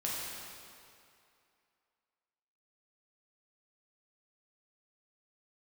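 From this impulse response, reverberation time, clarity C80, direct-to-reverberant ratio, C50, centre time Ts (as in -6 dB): 2.5 s, -0.5 dB, -6.0 dB, -2.0 dB, 0.149 s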